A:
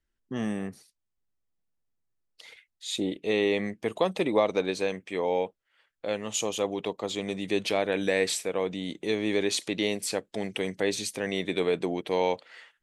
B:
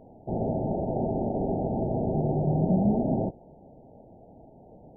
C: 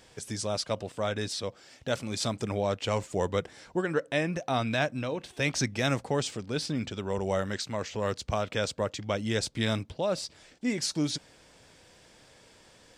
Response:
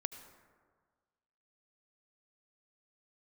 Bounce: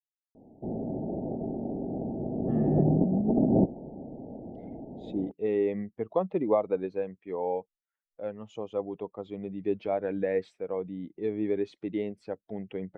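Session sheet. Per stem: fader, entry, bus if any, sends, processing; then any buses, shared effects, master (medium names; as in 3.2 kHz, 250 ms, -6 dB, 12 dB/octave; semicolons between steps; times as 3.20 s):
+1.0 dB, 2.15 s, no send, expander on every frequency bin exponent 1.5
2.28 s -13.5 dB -> 2.82 s -0.5 dB, 0.35 s, send -16 dB, peaking EQ 270 Hz +10.5 dB 1.6 oct; compressor with a negative ratio -22 dBFS, ratio -1
mute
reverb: on, RT60 1.6 s, pre-delay 67 ms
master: low-pass 1 kHz 12 dB/octave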